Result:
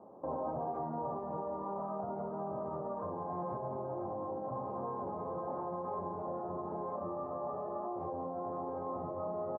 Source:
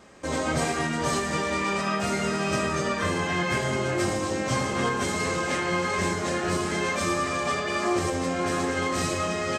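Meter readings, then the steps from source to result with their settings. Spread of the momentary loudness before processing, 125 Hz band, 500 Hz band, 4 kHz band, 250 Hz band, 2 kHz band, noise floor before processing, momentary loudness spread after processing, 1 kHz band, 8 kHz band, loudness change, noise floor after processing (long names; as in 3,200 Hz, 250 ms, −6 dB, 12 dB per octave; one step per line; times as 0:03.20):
1 LU, −16.0 dB, −9.5 dB, below −40 dB, −14.5 dB, below −35 dB, −29 dBFS, 2 LU, −9.5 dB, below −40 dB, −13.0 dB, −41 dBFS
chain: Butterworth low-pass 950 Hz 48 dB per octave
spectral tilt +3.5 dB per octave
far-end echo of a speakerphone 130 ms, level −30 dB
brickwall limiter −28 dBFS, peak gain reduction 8 dB
speech leveller 2 s
high-pass filter 96 Hz
dynamic equaliser 310 Hz, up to −7 dB, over −49 dBFS, Q 0.74
level +1 dB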